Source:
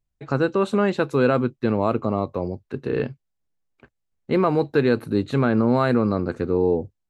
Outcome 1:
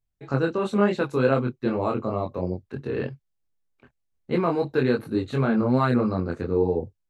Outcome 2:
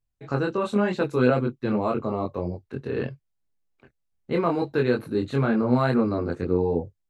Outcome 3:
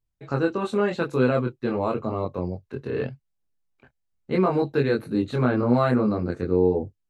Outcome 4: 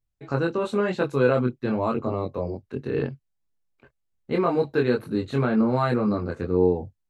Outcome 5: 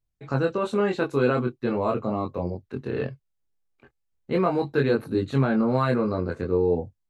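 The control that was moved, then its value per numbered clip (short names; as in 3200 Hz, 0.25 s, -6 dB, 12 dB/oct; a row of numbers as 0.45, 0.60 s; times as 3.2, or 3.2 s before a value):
chorus, rate: 3, 2, 0.44, 0.98, 0.2 Hz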